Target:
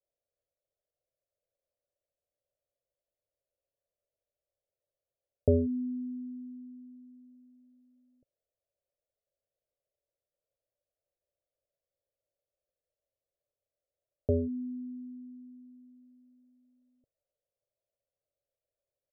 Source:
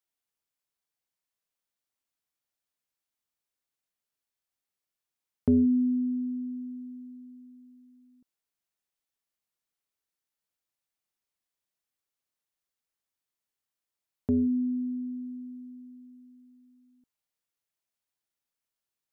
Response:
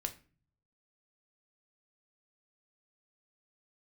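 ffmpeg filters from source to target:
-af "firequalizer=gain_entry='entry(120,0);entry(210,-17);entry(570,12);entry(960,-26)':delay=0.05:min_phase=1,volume=5dB"

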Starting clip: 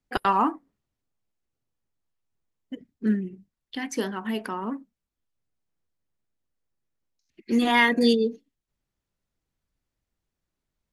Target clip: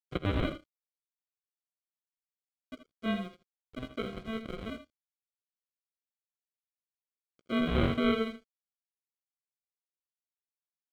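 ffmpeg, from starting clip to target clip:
ffmpeg -i in.wav -af "aresample=8000,acrusher=samples=9:mix=1:aa=0.000001,aresample=44100,aeval=exprs='sgn(val(0))*max(abs(val(0))-0.00708,0)':channel_layout=same,aecho=1:1:16|67|80:0.168|0.141|0.266,volume=-7.5dB" out.wav

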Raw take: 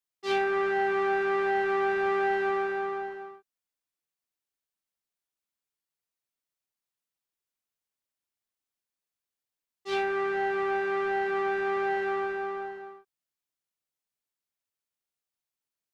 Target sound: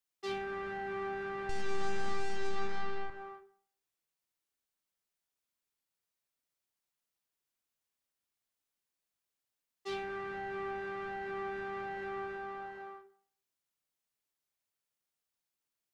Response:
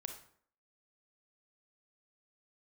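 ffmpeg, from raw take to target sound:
-filter_complex "[0:a]asettb=1/sr,asplit=3[link_01][link_02][link_03];[link_01]atrim=end=1.494[link_04];[link_02]atrim=start=1.49:end=3.1,asetpts=PTS-STARTPTS,afade=type=in:duration=0.004:curve=qsin,afade=type=out:start_time=1.606:duration=0.004:curve=qsin,aeval=exprs='0.133*(cos(1*acos(clip(val(0)/0.133,-1,1)))-cos(1*PI/2))+0.0237*(cos(8*acos(clip(val(0)/0.133,-1,1)))-cos(8*PI/2))':channel_layout=same[link_05];[link_03]atrim=start=3.096[link_06];[link_04][link_05]acrossfade=duration=0.004:curve1=hsin:curve2=qsin[link_07];[link_07][link_06]acrossfade=duration=0.004:curve1=qsin:curve2=hsin,acrossover=split=260[link_08][link_09];[link_09]acompressor=threshold=-41dB:ratio=3[link_10];[link_08][link_10]amix=inputs=2:normalize=0,asplit=2[link_11][link_12];[1:a]atrim=start_sample=2205[link_13];[link_12][link_13]afir=irnorm=-1:irlink=0,volume=2dB[link_14];[link_11][link_14]amix=inputs=2:normalize=0,volume=-4.5dB"

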